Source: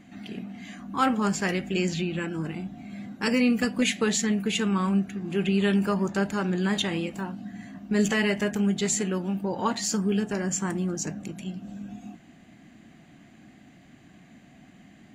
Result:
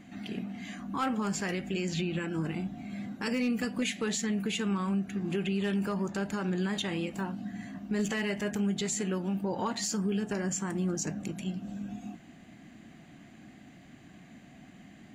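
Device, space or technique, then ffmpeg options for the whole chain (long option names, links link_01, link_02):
clipper into limiter: -af "asoftclip=type=hard:threshold=-15dB,alimiter=limit=-22.5dB:level=0:latency=1:release=175"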